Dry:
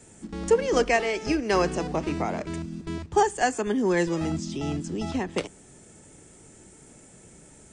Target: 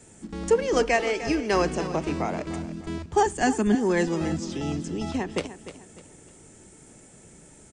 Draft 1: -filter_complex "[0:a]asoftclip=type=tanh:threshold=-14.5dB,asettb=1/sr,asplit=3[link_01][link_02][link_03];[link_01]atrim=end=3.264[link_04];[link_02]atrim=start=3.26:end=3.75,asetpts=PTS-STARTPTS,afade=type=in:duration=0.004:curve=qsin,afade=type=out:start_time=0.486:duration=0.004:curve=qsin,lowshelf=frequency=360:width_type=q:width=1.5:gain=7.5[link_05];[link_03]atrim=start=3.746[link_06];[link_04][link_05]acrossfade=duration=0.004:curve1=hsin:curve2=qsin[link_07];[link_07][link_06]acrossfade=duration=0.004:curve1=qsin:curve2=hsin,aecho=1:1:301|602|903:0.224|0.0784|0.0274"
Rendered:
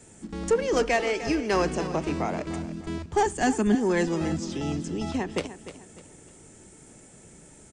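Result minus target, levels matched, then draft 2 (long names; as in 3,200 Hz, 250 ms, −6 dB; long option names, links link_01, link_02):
soft clipping: distortion +18 dB
-filter_complex "[0:a]asoftclip=type=tanh:threshold=-4dB,asettb=1/sr,asplit=3[link_01][link_02][link_03];[link_01]atrim=end=3.264[link_04];[link_02]atrim=start=3.26:end=3.75,asetpts=PTS-STARTPTS,afade=type=in:duration=0.004:curve=qsin,afade=type=out:start_time=0.486:duration=0.004:curve=qsin,lowshelf=frequency=360:width_type=q:width=1.5:gain=7.5[link_05];[link_03]atrim=start=3.746[link_06];[link_04][link_05]acrossfade=duration=0.004:curve1=hsin:curve2=qsin[link_07];[link_07][link_06]acrossfade=duration=0.004:curve1=qsin:curve2=hsin,aecho=1:1:301|602|903:0.224|0.0784|0.0274"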